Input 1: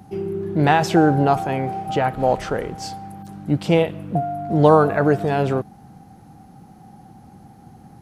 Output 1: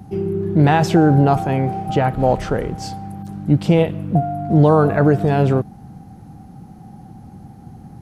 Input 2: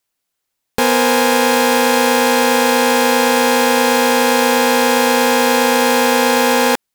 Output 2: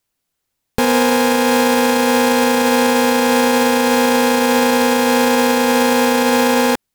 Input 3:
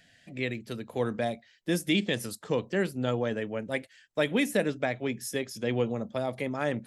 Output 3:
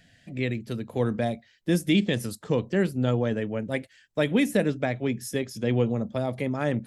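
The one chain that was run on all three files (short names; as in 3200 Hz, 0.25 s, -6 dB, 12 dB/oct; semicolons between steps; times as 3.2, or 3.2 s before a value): low shelf 280 Hz +9.5 dB; limiter -4.5 dBFS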